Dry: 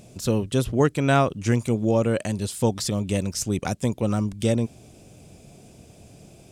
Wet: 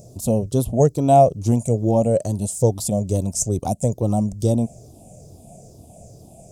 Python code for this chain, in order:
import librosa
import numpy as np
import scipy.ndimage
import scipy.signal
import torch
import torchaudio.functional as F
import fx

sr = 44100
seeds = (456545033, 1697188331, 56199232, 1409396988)

y = fx.spec_ripple(x, sr, per_octave=0.55, drift_hz=-2.3, depth_db=9)
y = fx.curve_eq(y, sr, hz=(120.0, 370.0, 680.0, 1600.0, 3500.0, 6700.0), db=(0, -5, 4, -25, -15, 0))
y = F.gain(torch.from_numpy(y), 4.0).numpy()